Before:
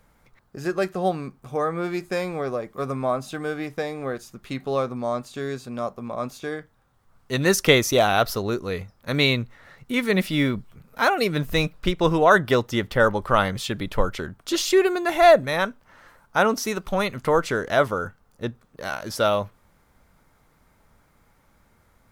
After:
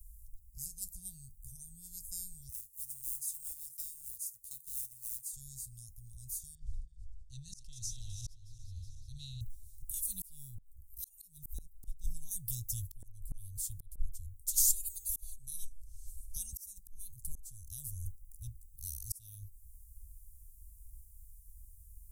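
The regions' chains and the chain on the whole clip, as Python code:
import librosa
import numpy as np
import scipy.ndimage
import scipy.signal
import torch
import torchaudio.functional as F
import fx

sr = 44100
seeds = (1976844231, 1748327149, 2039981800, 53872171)

y = fx.chain(x, sr, fx.highpass(hz=980.0, slope=6),
    fx.quant_float(bits=2), at=(2.49, 5.33))
y = fx.chain(y, sr, fx.reverse_delay_fb(ms=185, feedback_pct=58, wet_db=-7.5),
    fx.ladder_lowpass(hz=5600.0, resonance_pct=25),
    fx.sustainer(db_per_s=31.0), at=(6.55, 9.41))
y = fx.chain(y, sr, fx.lowpass(hz=11000.0, slope=12),
    fx.comb(ms=2.9, depth=0.57),
    fx.band_squash(depth_pct=40), at=(15.3, 16.53))
y = scipy.signal.sosfilt(scipy.signal.cheby2(4, 70, [260.0, 2400.0], 'bandstop', fs=sr, output='sos'), y)
y = fx.peak_eq(y, sr, hz=2600.0, db=7.5, octaves=0.45)
y = fx.auto_swell(y, sr, attack_ms=675.0)
y = F.gain(torch.from_numpy(y), 12.0).numpy()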